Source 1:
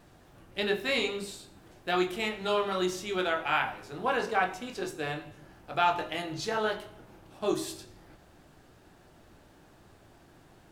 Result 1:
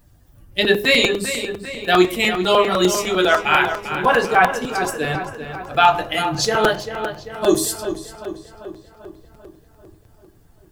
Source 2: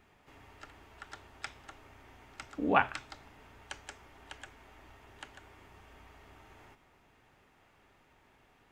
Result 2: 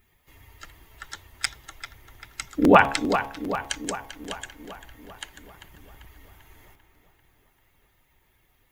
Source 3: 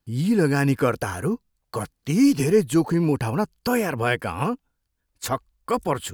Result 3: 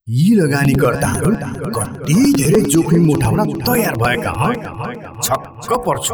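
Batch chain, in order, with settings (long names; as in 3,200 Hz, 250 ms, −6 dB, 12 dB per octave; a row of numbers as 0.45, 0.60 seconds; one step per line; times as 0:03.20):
spectral dynamics exaggerated over time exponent 1.5
high-shelf EQ 7,000 Hz +8 dB
hum removal 69.12 Hz, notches 16
brickwall limiter −18.5 dBFS
on a send: feedback echo with a low-pass in the loop 393 ms, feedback 60%, low-pass 3,900 Hz, level −9.5 dB
on the sum: regular buffer underruns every 0.10 s, samples 256, repeat, from 0:00.64
normalise the peak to −2 dBFS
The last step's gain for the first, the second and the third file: +15.5, +16.5, +13.5 decibels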